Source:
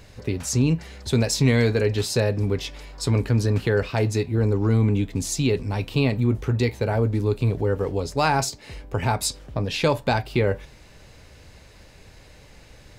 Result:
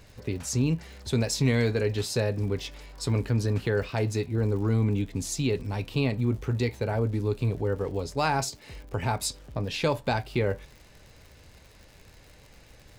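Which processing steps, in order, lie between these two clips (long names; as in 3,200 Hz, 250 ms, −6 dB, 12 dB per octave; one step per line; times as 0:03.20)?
surface crackle 110 per second −37 dBFS
level −5 dB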